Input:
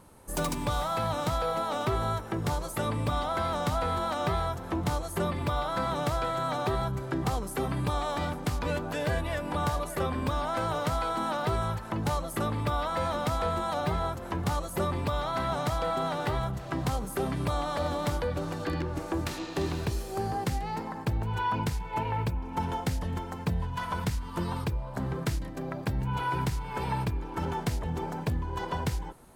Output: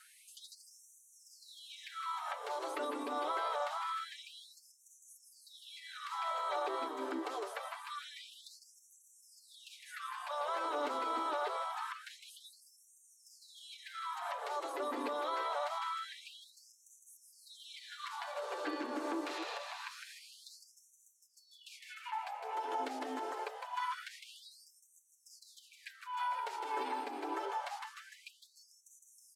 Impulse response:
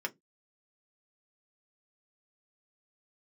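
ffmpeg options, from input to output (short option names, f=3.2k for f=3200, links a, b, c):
-filter_complex "[0:a]acompressor=threshold=-34dB:ratio=2.5,aecho=1:1:7:0.74,asplit=2[a][b];[b]asplit=7[c][d][e][f][g][h][i];[c]adelay=158,afreqshift=-62,volume=-9dB[j];[d]adelay=316,afreqshift=-124,volume=-13.9dB[k];[e]adelay=474,afreqshift=-186,volume=-18.8dB[l];[f]adelay=632,afreqshift=-248,volume=-23.6dB[m];[g]adelay=790,afreqshift=-310,volume=-28.5dB[n];[h]adelay=948,afreqshift=-372,volume=-33.4dB[o];[i]adelay=1106,afreqshift=-434,volume=-38.3dB[p];[j][k][l][m][n][o][p]amix=inputs=7:normalize=0[q];[a][q]amix=inputs=2:normalize=0,alimiter=level_in=6dB:limit=-24dB:level=0:latency=1:release=111,volume=-6dB,acrossover=split=4800[r][s];[s]acompressor=threshold=-60dB:ratio=4:attack=1:release=60[t];[r][t]amix=inputs=2:normalize=0,lowpass=12k,afftfilt=real='re*gte(b*sr/1024,240*pow(5800/240,0.5+0.5*sin(2*PI*0.25*pts/sr)))':imag='im*gte(b*sr/1024,240*pow(5800/240,0.5+0.5*sin(2*PI*0.25*pts/sr)))':win_size=1024:overlap=0.75,volume=3dB"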